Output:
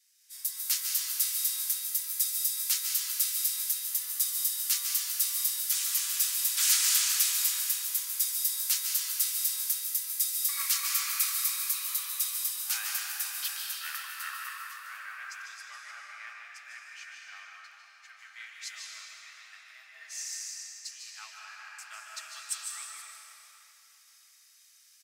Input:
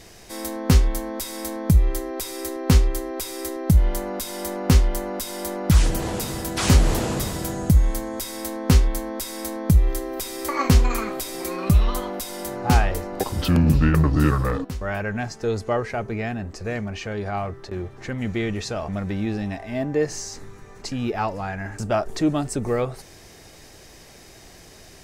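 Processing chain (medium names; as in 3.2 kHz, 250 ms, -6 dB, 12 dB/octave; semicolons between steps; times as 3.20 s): high-pass 1.3 kHz 24 dB/octave; differentiator; delay 151 ms -8 dB; algorithmic reverb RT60 4.9 s, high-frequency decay 0.85×, pre-delay 105 ms, DRR -3.5 dB; three bands expanded up and down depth 70%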